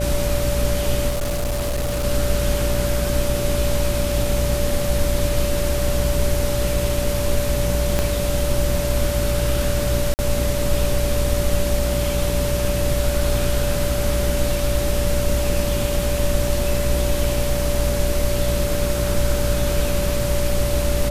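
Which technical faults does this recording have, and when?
buzz 60 Hz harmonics 10 -24 dBFS
whine 580 Hz -24 dBFS
1.09–2.05 s: clipped -19 dBFS
7.99 s: pop -5 dBFS
10.14–10.19 s: dropout 49 ms

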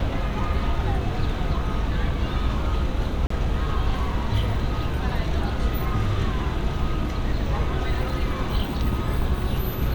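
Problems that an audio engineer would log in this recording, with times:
3.27–3.30 s: dropout 34 ms

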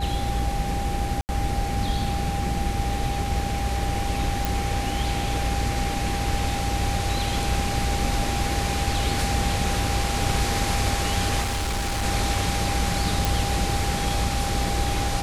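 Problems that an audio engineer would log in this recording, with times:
hum 60 Hz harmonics 6 -29 dBFS
whine 800 Hz -30 dBFS
1.21–1.29 s: dropout 79 ms
4.45 s: pop
11.42–12.04 s: clipped -22.5 dBFS
13.25 s: pop

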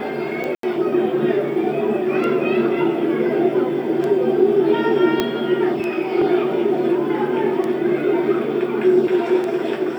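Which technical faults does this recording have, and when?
tick 33 1/3 rpm -14 dBFS
0.55–0.63 s: dropout 83 ms
5.20 s: pop -5 dBFS

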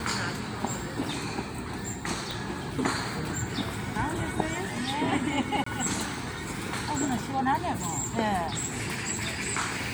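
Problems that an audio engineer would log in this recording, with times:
2.31 s: pop
5.64–5.66 s: dropout 24 ms

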